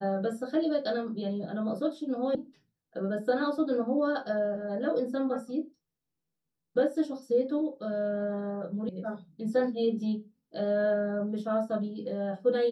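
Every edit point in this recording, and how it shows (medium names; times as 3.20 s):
2.35 s: sound stops dead
8.89 s: sound stops dead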